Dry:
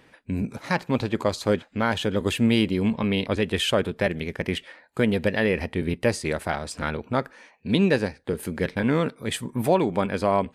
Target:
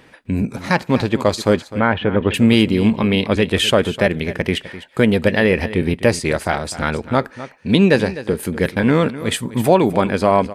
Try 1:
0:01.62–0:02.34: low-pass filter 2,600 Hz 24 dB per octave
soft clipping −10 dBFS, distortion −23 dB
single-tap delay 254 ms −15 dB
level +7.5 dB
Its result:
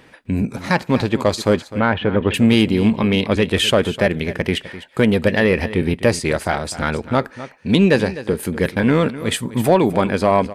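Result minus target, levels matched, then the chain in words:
soft clipping: distortion +17 dB
0:01.62–0:02.34: low-pass filter 2,600 Hz 24 dB per octave
soft clipping −0.5 dBFS, distortion −40 dB
single-tap delay 254 ms −15 dB
level +7.5 dB

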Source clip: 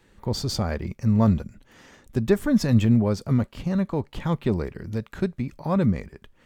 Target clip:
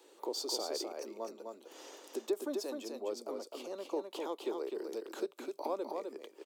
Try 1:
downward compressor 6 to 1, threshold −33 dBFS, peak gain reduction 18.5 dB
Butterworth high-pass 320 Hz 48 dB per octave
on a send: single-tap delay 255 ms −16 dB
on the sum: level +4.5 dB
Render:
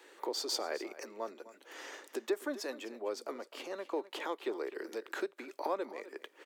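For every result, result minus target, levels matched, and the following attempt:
2,000 Hz band +10.0 dB; echo-to-direct −11.5 dB
downward compressor 6 to 1, threshold −33 dBFS, peak gain reduction 18.5 dB
Butterworth high-pass 320 Hz 48 dB per octave
parametric band 1,800 Hz −15 dB 1 octave
on a send: single-tap delay 255 ms −16 dB
on the sum: level +4.5 dB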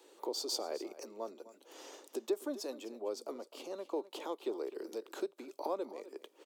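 echo-to-direct −11.5 dB
downward compressor 6 to 1, threshold −33 dBFS, peak gain reduction 18.5 dB
Butterworth high-pass 320 Hz 48 dB per octave
parametric band 1,800 Hz −15 dB 1 octave
on a send: single-tap delay 255 ms −4.5 dB
on the sum: level +4.5 dB

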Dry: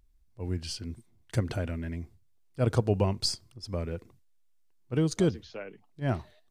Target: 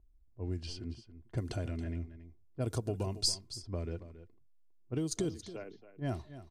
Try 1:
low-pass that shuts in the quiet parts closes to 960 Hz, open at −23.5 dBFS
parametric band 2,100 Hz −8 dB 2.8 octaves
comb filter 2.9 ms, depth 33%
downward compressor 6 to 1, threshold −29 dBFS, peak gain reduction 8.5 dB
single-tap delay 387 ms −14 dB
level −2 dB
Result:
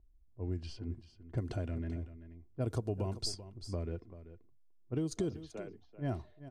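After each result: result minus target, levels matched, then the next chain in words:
echo 110 ms late; 8,000 Hz band −6.5 dB
low-pass that shuts in the quiet parts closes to 960 Hz, open at −23.5 dBFS
parametric band 2,100 Hz −8 dB 2.8 octaves
comb filter 2.9 ms, depth 33%
downward compressor 6 to 1, threshold −29 dBFS, peak gain reduction 8.5 dB
single-tap delay 277 ms −14 dB
level −2 dB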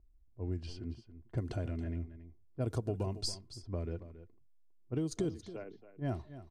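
8,000 Hz band −7.0 dB
low-pass that shuts in the quiet parts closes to 960 Hz, open at −23.5 dBFS
parametric band 2,100 Hz −8 dB 2.8 octaves
comb filter 2.9 ms, depth 33%
downward compressor 6 to 1, threshold −29 dBFS, peak gain reduction 8.5 dB
high-shelf EQ 2,900 Hz +9.5 dB
single-tap delay 277 ms −14 dB
level −2 dB

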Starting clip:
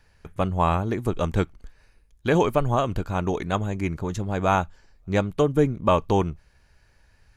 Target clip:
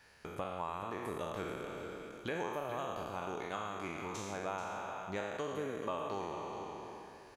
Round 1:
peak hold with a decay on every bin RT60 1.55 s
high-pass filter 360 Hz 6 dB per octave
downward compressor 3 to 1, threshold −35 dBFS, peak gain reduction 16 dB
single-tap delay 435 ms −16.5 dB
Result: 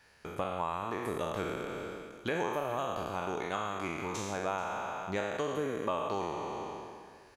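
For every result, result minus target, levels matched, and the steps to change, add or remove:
downward compressor: peak gain reduction −5.5 dB; echo-to-direct −6.5 dB
change: downward compressor 3 to 1, threshold −43 dBFS, peak gain reduction 21 dB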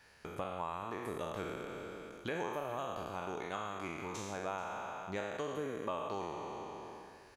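echo-to-direct −6.5 dB
change: single-tap delay 435 ms −10 dB

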